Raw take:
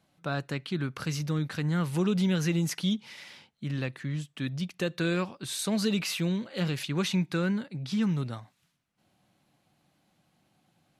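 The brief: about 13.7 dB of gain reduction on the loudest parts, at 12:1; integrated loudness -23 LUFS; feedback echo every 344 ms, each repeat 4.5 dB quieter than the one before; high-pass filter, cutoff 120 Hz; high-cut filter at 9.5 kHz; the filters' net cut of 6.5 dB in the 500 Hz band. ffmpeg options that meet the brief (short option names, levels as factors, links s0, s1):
-af "highpass=120,lowpass=9500,equalizer=f=500:t=o:g=-9,acompressor=threshold=0.0112:ratio=12,aecho=1:1:344|688|1032|1376|1720|2064|2408|2752|3096:0.596|0.357|0.214|0.129|0.0772|0.0463|0.0278|0.0167|0.01,volume=8.41"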